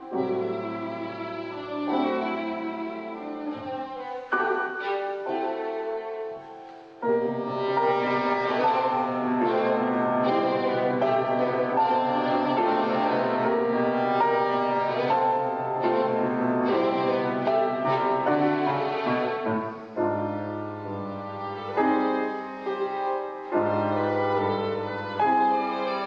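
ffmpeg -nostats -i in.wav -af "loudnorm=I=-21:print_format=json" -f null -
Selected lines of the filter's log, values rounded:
"input_i" : "-26.0",
"input_tp" : "-12.2",
"input_lra" : "5.6",
"input_thresh" : "-36.0",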